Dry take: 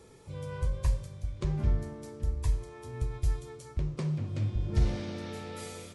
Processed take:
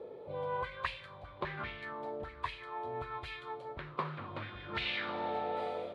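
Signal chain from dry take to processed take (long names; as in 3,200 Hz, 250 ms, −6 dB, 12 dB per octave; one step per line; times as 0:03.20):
envelope filter 520–2,600 Hz, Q 3.6, up, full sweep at −23 dBFS
high shelf with overshoot 4,800 Hz −8 dB, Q 3
level +16 dB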